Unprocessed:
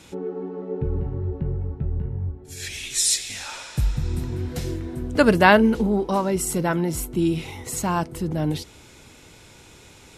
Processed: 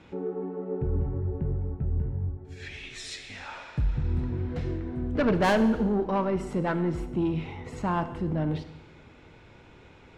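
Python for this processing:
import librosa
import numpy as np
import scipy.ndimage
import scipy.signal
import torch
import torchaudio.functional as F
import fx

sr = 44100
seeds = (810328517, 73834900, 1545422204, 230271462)

y = scipy.signal.sosfilt(scipy.signal.butter(2, 2200.0, 'lowpass', fs=sr, output='sos'), x)
y = 10.0 ** (-16.0 / 20.0) * np.tanh(y / 10.0 ** (-16.0 / 20.0))
y = fx.rev_schroeder(y, sr, rt60_s=1.0, comb_ms=25, drr_db=10.0)
y = y * librosa.db_to_amplitude(-2.5)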